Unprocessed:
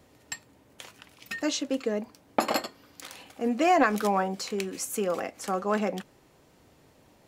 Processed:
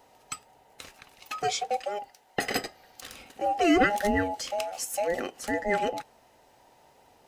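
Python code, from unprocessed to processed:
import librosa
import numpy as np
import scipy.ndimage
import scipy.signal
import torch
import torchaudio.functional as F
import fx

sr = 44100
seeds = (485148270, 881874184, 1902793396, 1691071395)

y = fx.band_invert(x, sr, width_hz=1000)
y = fx.low_shelf(y, sr, hz=460.0, db=-11.0, at=(1.83, 2.56))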